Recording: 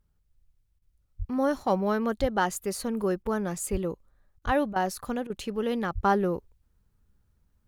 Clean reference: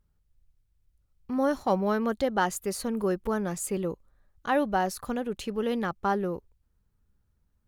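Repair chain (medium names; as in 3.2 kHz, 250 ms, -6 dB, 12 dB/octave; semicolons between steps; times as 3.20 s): de-plosive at 1.18/2.20/3.71/4.45/5.94 s; interpolate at 0.79/3.23/4.39/4.73/5.27 s, 28 ms; trim 0 dB, from 6.04 s -3.5 dB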